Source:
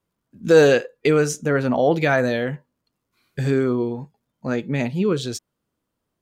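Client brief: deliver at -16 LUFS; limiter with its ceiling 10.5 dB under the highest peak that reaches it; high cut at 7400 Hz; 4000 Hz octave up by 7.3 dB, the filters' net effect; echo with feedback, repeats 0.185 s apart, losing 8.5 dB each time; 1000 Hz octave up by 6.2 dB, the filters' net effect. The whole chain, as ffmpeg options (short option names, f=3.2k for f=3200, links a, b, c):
-af "lowpass=7.4k,equalizer=f=1k:t=o:g=9,equalizer=f=4k:t=o:g=8.5,alimiter=limit=-9.5dB:level=0:latency=1,aecho=1:1:185|370|555|740:0.376|0.143|0.0543|0.0206,volume=5dB"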